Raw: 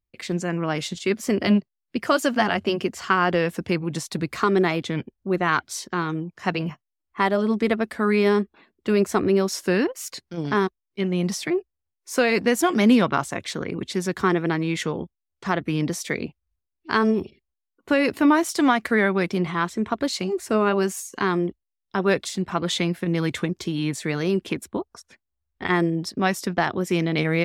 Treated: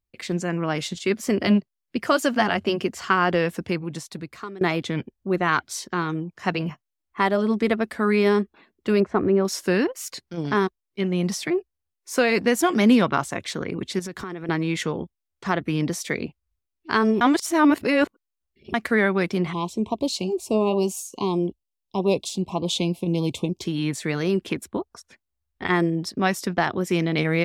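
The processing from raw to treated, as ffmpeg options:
-filter_complex "[0:a]asettb=1/sr,asplit=3[a][b][c];[a]atrim=end=9.004[d];[b]atrim=start=9:end=9.45,asetpts=PTS-STARTPTS,afade=t=in:d=0.004:c=qsin,afade=t=out:st=0.446:d=0.004:c=qsin,lowpass=1.6k[e];[c]atrim=start=9.446[f];[d][e]acrossfade=d=0.004:c1=hsin:c2=qsin[g];[g][f]acrossfade=d=0.004:c1=qsin:c2=hsin,asettb=1/sr,asplit=3[h][i][j];[h]atrim=end=13.994[k];[i]atrim=start=13.99:end=14.49,asetpts=PTS-STARTPTS,afade=t=in:d=0.004:c=qsin,afade=t=out:st=0.496:d=0.004:c=qsin,acompressor=threshold=-29dB:ratio=8:attack=3.2:release=140:knee=1:detection=peak[l];[j]atrim=start=14.486[m];[k][l]acrossfade=d=0.004:c1=hsin:c2=qsin[n];[n][m]acrossfade=d=0.004:c1=qsin:c2=hsin,asettb=1/sr,asplit=3[o][p][q];[o]atrim=end=19.534[r];[p]atrim=start=19.53:end=23.62,asetpts=PTS-STARTPTS,afade=t=in:d=0.004:c=qsin,afade=t=out:st=4.086:d=0.004:c=qsin,asuperstop=centerf=1600:order=8:qfactor=1.1[s];[q]atrim=start=23.616[t];[r][s]acrossfade=d=0.004:c1=hsin:c2=qsin[u];[u][t]acrossfade=d=0.004:c1=qsin:c2=hsin,asplit=4[v][w][x][y];[v]atrim=end=4.61,asetpts=PTS-STARTPTS,afade=t=out:st=3.45:d=1.16:silence=0.0749894[z];[w]atrim=start=4.61:end=17.212,asetpts=PTS-STARTPTS,afade=t=in:d=0.004:c=hsin:silence=0.0749894[aa];[x]atrim=start=17.208:end=18.742,asetpts=PTS-STARTPTS,areverse[ab];[y]atrim=start=18.738[ac];[z][aa]concat=n=2:v=0:a=1[ad];[ad][ab]acrossfade=d=0.004:c1=hsin:c2=hsin[ae];[ae][ac]acrossfade=d=0.004:c1=hsin:c2=hsin"

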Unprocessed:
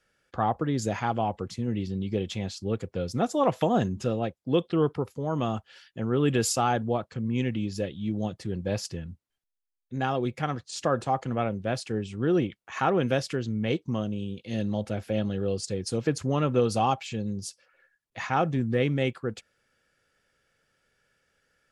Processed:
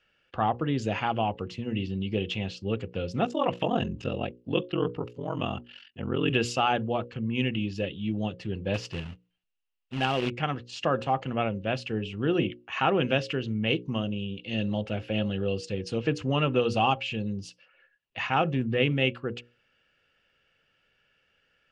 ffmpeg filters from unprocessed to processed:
-filter_complex "[0:a]asettb=1/sr,asplit=3[a][b][c];[a]atrim=end=3.254[d];[b]atrim=start=3.25:end=6.3,asetpts=PTS-STARTPTS,afade=t=in:d=0.004:c=qsin,afade=t=out:st=3.046:d=0.004:c=qsin,aeval=exprs='val(0)*sin(2*PI*22*n/s)':c=same[e];[c]atrim=start=6.296[f];[d][e]acrossfade=d=0.004:c1=hsin:c2=qsin[g];[g][f]acrossfade=d=0.004:c1=qsin:c2=hsin,asettb=1/sr,asplit=3[h][i][j];[h]atrim=end=8.744[k];[i]atrim=start=8.74:end=10.3,asetpts=PTS-STARTPTS,afade=t=in:d=0.004:c=qsin,afade=t=out:st=1.556:d=0.004:c=qsin,acrusher=bits=2:mode=log:mix=0:aa=0.000001[l];[j]atrim=start=10.296[m];[k][l]acrossfade=d=0.004:c1=hsin:c2=qsin[n];[n][m]acrossfade=d=0.004:c1=qsin:c2=hsin,lowpass=4k,equalizer=f=2.8k:t=o:w=0.31:g=14.5,bandreject=f=60:t=h:w=6,bandreject=f=120:t=h:w=6,bandreject=f=180:t=h:w=6,bandreject=f=240:t=h:w=6,bandreject=f=300:t=h:w=6,bandreject=f=360:t=h:w=6,bandreject=f=420:t=h:w=6,bandreject=f=480:t=h:w=6,bandreject=f=540:t=h:w=6"

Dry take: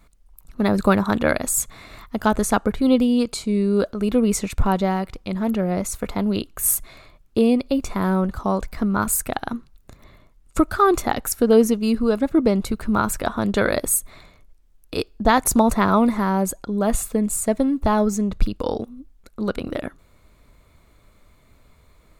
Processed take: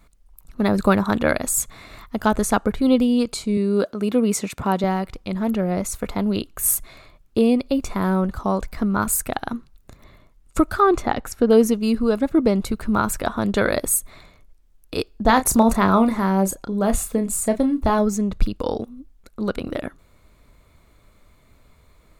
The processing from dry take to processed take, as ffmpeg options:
-filter_complex "[0:a]asettb=1/sr,asplit=3[a][b][c];[a]atrim=end=3.574[d];[b]atrim=start=3.57:end=4.84,asetpts=PTS-STARTPTS,afade=t=in:d=0.004:c=qsin,afade=t=out:st=1.266:d=0.004:c=qsin,highpass=150[e];[c]atrim=start=4.836[f];[d][e]acrossfade=d=0.004:c1=hsin:c2=qsin[g];[g][f]acrossfade=d=0.004:c1=qsin:c2=hsin,asettb=1/sr,asplit=3[h][i][j];[h]atrim=end=10.804[k];[i]atrim=start=10.8:end=11.5,asetpts=PTS-STARTPTS,afade=t=in:d=0.004:c=qsin,afade=t=out:st=0.696:d=0.004:c=qsin,aemphasis=mode=reproduction:type=50fm[l];[j]atrim=start=11.496[m];[k][l]acrossfade=d=0.004:c1=hsin:c2=qsin[n];[n][m]acrossfade=d=0.004:c1=qsin:c2=hsin,asettb=1/sr,asplit=3[o][p][q];[o]atrim=end=15.224[r];[p]atrim=start=15.22:end=17.99,asetpts=PTS-STARTPTS,afade=t=in:d=0.004:c=qsin,afade=t=out:st=2.766:d=0.004:c=qsin,asplit=2[s][t];[t]adelay=31,volume=-9.5dB[u];[s][u]amix=inputs=2:normalize=0,atrim=end_sample=122157[v];[q]atrim=start=17.986[w];[r][v]acrossfade=d=0.004:c1=hsin:c2=qsin[x];[x][w]acrossfade=d=0.004:c1=qsin:c2=hsin"

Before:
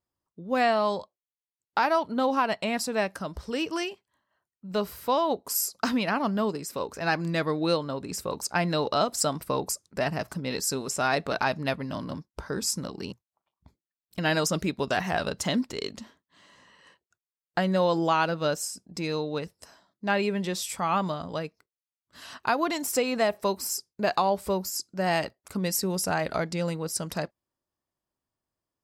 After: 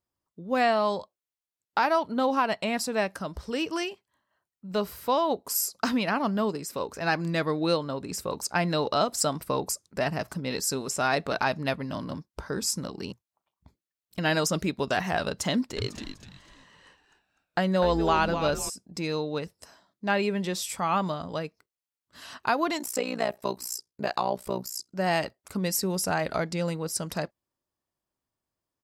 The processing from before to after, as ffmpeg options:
-filter_complex "[0:a]asplit=3[a][b][c];[a]afade=t=out:st=15.76:d=0.02[d];[b]asplit=5[e][f][g][h][i];[f]adelay=249,afreqshift=-130,volume=-8.5dB[j];[g]adelay=498,afreqshift=-260,volume=-18.1dB[k];[h]adelay=747,afreqshift=-390,volume=-27.8dB[l];[i]adelay=996,afreqshift=-520,volume=-37.4dB[m];[e][j][k][l][m]amix=inputs=5:normalize=0,afade=t=in:st=15.76:d=0.02,afade=t=out:st=18.68:d=0.02[n];[c]afade=t=in:st=18.68:d=0.02[o];[d][n][o]amix=inputs=3:normalize=0,asettb=1/sr,asplit=3[p][q][r];[p]atrim=end=22.794[s];[q]atrim=start=22.79:end=24.93,asetpts=PTS-STARTPTS,afade=t=in:d=0.004:c=qsin,afade=t=out:st=2.136:d=0.004:c=qsin,tremolo=f=60:d=0.919[t];[r]atrim=start=24.926[u];[s][t]acrossfade=d=0.004:c1=hsin:c2=qsin[v];[v][u]acrossfade=d=0.004:c1=qsin:c2=hsin"

